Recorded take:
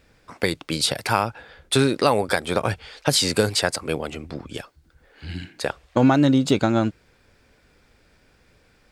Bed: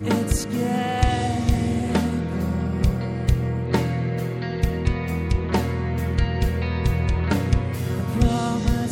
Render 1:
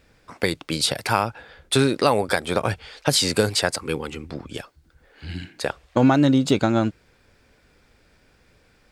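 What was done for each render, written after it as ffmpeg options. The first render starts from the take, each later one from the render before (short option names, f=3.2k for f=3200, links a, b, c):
-filter_complex "[0:a]asettb=1/sr,asplit=3[a][b][c];[a]atrim=end=3.784[d];[b]atrim=start=3.78:end=4.29,asetpts=PTS-STARTPTS,afade=t=in:d=0.004:c=qsin,afade=t=out:st=0.506:d=0.004:c=qsin,asuperstop=centerf=640:order=4:qfactor=2.5[e];[c]atrim=start=4.286[f];[d][e]acrossfade=d=0.004:c1=hsin:c2=qsin[g];[g][f]acrossfade=d=0.004:c1=qsin:c2=hsin"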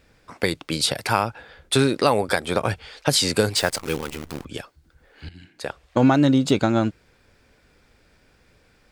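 -filter_complex "[0:a]asettb=1/sr,asplit=3[a][b][c];[a]atrim=end=3.564[d];[b]atrim=start=3.56:end=4.45,asetpts=PTS-STARTPTS,afade=t=in:d=0.004:c=qsin,afade=t=out:st=0.886:d=0.004:c=qsin,acrusher=bits=6:dc=4:mix=0:aa=0.000001[e];[c]atrim=start=4.446[f];[d][e]acrossfade=d=0.004:c1=hsin:c2=qsin[g];[g][f]acrossfade=d=0.004:c1=qsin:c2=hsin,asplit=2[h][i];[h]atrim=end=5.29,asetpts=PTS-STARTPTS,afade=t=out:st=5.286:d=0.004:c=hsin:silence=0.133352[j];[i]atrim=start=5.29,asetpts=PTS-STARTPTS,afade=t=in:d=0.72:silence=0.133352[k];[j][k]concat=n=2:v=0:a=1"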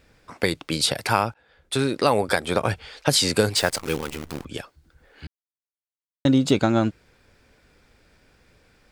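-filter_complex "[0:a]asplit=4[a][b][c][d];[a]atrim=end=1.34,asetpts=PTS-STARTPTS,afade=t=out:st=1.336:d=0.004:c=hsin:silence=0.0668344[e];[b]atrim=start=1.34:end=5.27,asetpts=PTS-STARTPTS,afade=t=in:d=0.83:silence=0.0668344,afade=t=out:st=3.926:d=0.004:c=hsin[f];[c]atrim=start=5.27:end=6.25,asetpts=PTS-STARTPTS,volume=0[g];[d]atrim=start=6.25,asetpts=PTS-STARTPTS,afade=t=in:d=0.004:c=hsin[h];[e][f][g][h]concat=n=4:v=0:a=1"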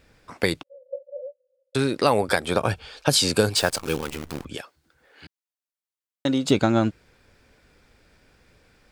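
-filter_complex "[0:a]asettb=1/sr,asplit=3[a][b][c];[a]atrim=end=0.634[d];[b]atrim=start=0.63:end=1.75,asetpts=PTS-STARTPTS,afade=t=in:d=0.004:c=qsin,afade=t=out:st=1.116:d=0.004:c=qsin,asuperpass=centerf=540:order=12:qfactor=6.6[e];[c]atrim=start=1.746[f];[d][e]acrossfade=d=0.004:c1=hsin:c2=qsin[g];[g][f]acrossfade=d=0.004:c1=qsin:c2=hsin,asettb=1/sr,asplit=3[h][i][j];[h]atrim=end=2.514[k];[i]atrim=start=2.51:end=4.03,asetpts=PTS-STARTPTS,afade=t=in:d=0.004:c=qsin,afade=t=out:st=1.516:d=0.004:c=qsin,bandreject=f=2k:w=6.5[l];[j]atrim=start=4.026[m];[k][l]acrossfade=d=0.004:c1=hsin:c2=qsin[n];[n][m]acrossfade=d=0.004:c1=qsin:c2=hsin,asettb=1/sr,asplit=3[o][p][q];[o]atrim=end=4.554[r];[p]atrim=start=4.55:end=6.49,asetpts=PTS-STARTPTS,afade=t=in:d=0.004:c=qsin,afade=t=out:st=1.936:d=0.004:c=qsin,highpass=f=380:p=1[s];[q]atrim=start=6.486[t];[r][s]acrossfade=d=0.004:c1=hsin:c2=qsin[u];[u][t]acrossfade=d=0.004:c1=qsin:c2=hsin"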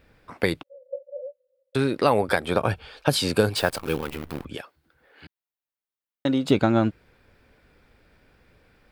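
-af "equalizer=f=6.8k:t=o:w=1.2:g=-10.5"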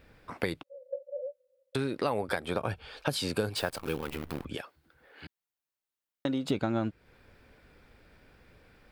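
-af "acompressor=threshold=-34dB:ratio=2"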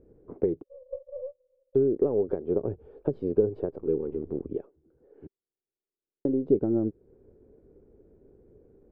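-af "aeval=exprs='if(lt(val(0),0),0.708*val(0),val(0))':c=same,lowpass=f=400:t=q:w=4.9"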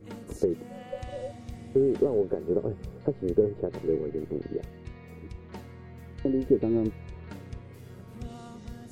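-filter_complex "[1:a]volume=-21dB[a];[0:a][a]amix=inputs=2:normalize=0"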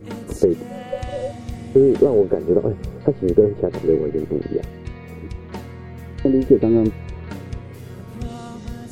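-af "volume=10dB,alimiter=limit=-2dB:level=0:latency=1"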